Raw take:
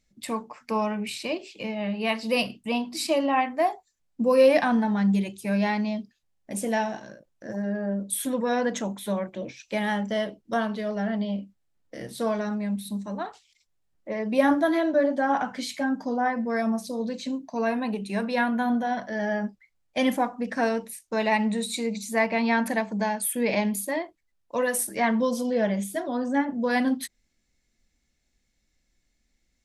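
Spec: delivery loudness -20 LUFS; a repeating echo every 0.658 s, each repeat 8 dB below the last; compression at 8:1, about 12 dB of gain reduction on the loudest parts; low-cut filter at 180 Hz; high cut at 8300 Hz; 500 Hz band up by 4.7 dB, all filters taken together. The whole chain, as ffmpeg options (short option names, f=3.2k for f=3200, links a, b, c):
-af "highpass=180,lowpass=8.3k,equalizer=f=500:t=o:g=5.5,acompressor=threshold=-21dB:ratio=8,aecho=1:1:658|1316|1974|2632|3290:0.398|0.159|0.0637|0.0255|0.0102,volume=7.5dB"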